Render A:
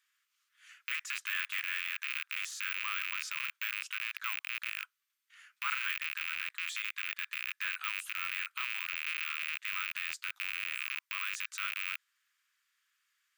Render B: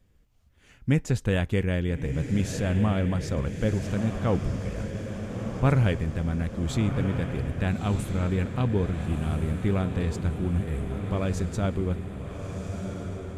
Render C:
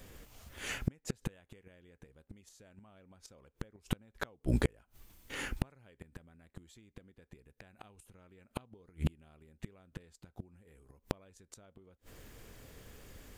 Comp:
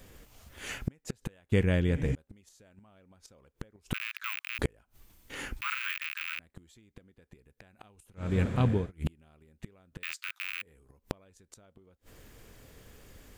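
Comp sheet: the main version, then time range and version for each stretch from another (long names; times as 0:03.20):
C
0:01.52–0:02.15: punch in from B
0:03.94–0:04.59: punch in from A
0:05.61–0:06.39: punch in from A
0:08.28–0:08.80: punch in from B, crossfade 0.24 s
0:10.03–0:10.62: punch in from A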